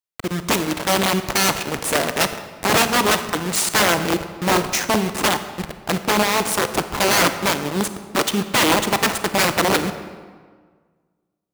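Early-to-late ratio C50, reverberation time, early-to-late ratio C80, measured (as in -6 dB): 11.0 dB, 1.7 s, 12.5 dB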